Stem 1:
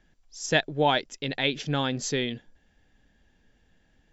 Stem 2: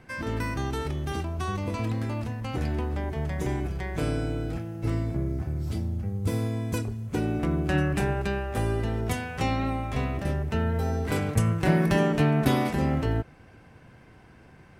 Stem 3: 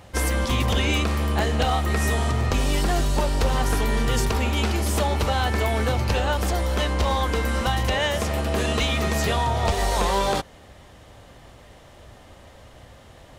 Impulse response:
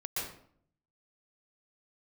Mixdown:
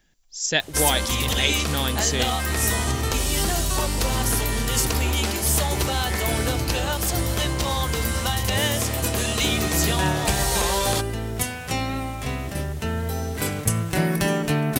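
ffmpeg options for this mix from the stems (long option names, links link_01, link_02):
-filter_complex "[0:a]volume=-2dB[link_01];[1:a]adelay=2300,volume=-0.5dB[link_02];[2:a]acompressor=mode=upward:threshold=-37dB:ratio=2.5,adelay=600,volume=-4dB[link_03];[link_01][link_02][link_03]amix=inputs=3:normalize=0,crystalizer=i=3.5:c=0"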